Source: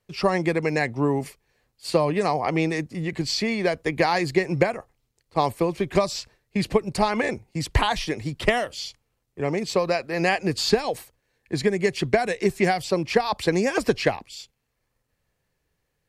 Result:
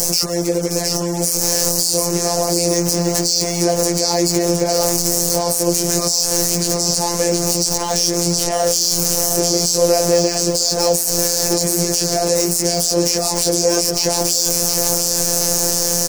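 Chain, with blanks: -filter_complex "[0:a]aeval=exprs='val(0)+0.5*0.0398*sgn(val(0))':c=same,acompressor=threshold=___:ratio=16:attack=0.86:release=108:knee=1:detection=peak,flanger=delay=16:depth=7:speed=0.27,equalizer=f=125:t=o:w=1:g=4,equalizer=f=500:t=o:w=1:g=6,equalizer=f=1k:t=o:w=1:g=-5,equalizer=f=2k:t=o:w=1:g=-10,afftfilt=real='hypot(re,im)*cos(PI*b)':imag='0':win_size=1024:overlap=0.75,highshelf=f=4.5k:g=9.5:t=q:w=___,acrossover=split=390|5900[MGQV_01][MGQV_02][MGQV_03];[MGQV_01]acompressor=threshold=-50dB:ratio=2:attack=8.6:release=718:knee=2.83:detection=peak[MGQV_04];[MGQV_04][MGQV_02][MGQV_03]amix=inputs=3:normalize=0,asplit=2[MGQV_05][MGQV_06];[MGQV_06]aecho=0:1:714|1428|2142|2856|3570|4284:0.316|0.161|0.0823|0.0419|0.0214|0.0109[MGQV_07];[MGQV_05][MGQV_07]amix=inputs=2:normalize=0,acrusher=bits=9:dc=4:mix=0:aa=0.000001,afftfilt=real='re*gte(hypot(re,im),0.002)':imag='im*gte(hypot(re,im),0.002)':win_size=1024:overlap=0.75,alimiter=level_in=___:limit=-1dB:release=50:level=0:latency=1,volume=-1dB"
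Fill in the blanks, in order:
-27dB, 3, 20.5dB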